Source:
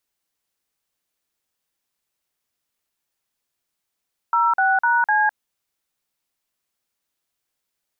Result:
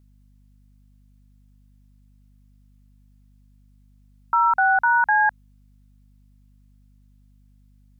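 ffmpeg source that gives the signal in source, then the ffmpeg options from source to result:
-f lavfi -i "aevalsrc='0.133*clip(min(mod(t,0.252),0.207-mod(t,0.252))/0.002,0,1)*(eq(floor(t/0.252),0)*(sin(2*PI*941*mod(t,0.252))+sin(2*PI*1336*mod(t,0.252)))+eq(floor(t/0.252),1)*(sin(2*PI*770*mod(t,0.252))+sin(2*PI*1477*mod(t,0.252)))+eq(floor(t/0.252),2)*(sin(2*PI*941*mod(t,0.252))+sin(2*PI*1477*mod(t,0.252)))+eq(floor(t/0.252),3)*(sin(2*PI*852*mod(t,0.252))+sin(2*PI*1633*mod(t,0.252))))':duration=1.008:sample_rate=44100"
-af "aeval=exprs='val(0)+0.002*(sin(2*PI*50*n/s)+sin(2*PI*2*50*n/s)/2+sin(2*PI*3*50*n/s)/3+sin(2*PI*4*50*n/s)/4+sin(2*PI*5*50*n/s)/5)':channel_layout=same"

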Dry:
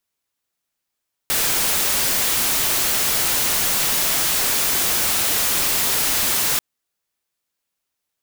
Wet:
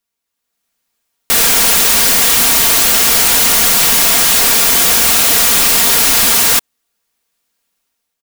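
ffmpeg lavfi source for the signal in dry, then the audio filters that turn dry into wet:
-f lavfi -i "anoisesrc=color=white:amplitude=0.183:duration=5.29:sample_rate=44100:seed=1"
-af "aecho=1:1:4.3:0.45,dynaudnorm=framelen=220:gausssize=5:maxgain=10dB"

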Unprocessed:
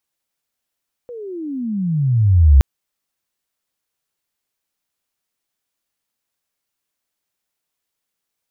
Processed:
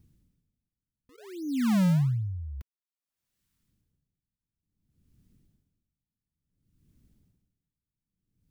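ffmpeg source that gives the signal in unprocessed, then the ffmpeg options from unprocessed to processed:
-f lavfi -i "aevalsrc='pow(10,(-4.5+25*(t/1.52-1))/20)*sin(2*PI*499*1.52/(-35.5*log(2)/12)*(exp(-35.5*log(2)/12*t/1.52)-1))':duration=1.52:sample_rate=44100"
-filter_complex "[0:a]acrossover=split=210|890[link_01][link_02][link_03];[link_01]acompressor=mode=upward:threshold=-33dB:ratio=2.5[link_04];[link_02]acrusher=samples=34:mix=1:aa=0.000001:lfo=1:lforange=54.4:lforate=1.2[link_05];[link_04][link_05][link_03]amix=inputs=3:normalize=0,aeval=exprs='val(0)*pow(10,-29*(0.5-0.5*cos(2*PI*0.57*n/s))/20)':channel_layout=same"

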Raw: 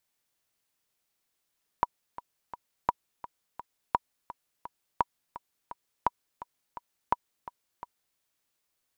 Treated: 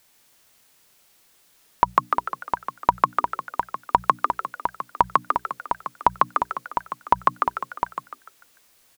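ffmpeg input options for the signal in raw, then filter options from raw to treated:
-f lavfi -i "aevalsrc='pow(10,(-9.5-16.5*gte(mod(t,3*60/170),60/170))/20)*sin(2*PI*966*mod(t,60/170))*exp(-6.91*mod(t,60/170)/0.03)':duration=6.35:sample_rate=44100"
-filter_complex "[0:a]bandreject=frequency=60:width_type=h:width=6,bandreject=frequency=120:width_type=h:width=6,bandreject=frequency=180:width_type=h:width=6,asplit=2[link_01][link_02];[link_02]asplit=5[link_03][link_04][link_05][link_06][link_07];[link_03]adelay=148,afreqshift=120,volume=-6.5dB[link_08];[link_04]adelay=296,afreqshift=240,volume=-14.7dB[link_09];[link_05]adelay=444,afreqshift=360,volume=-22.9dB[link_10];[link_06]adelay=592,afreqshift=480,volume=-31dB[link_11];[link_07]adelay=740,afreqshift=600,volume=-39.2dB[link_12];[link_08][link_09][link_10][link_11][link_12]amix=inputs=5:normalize=0[link_13];[link_01][link_13]amix=inputs=2:normalize=0,alimiter=level_in=19.5dB:limit=-1dB:release=50:level=0:latency=1"

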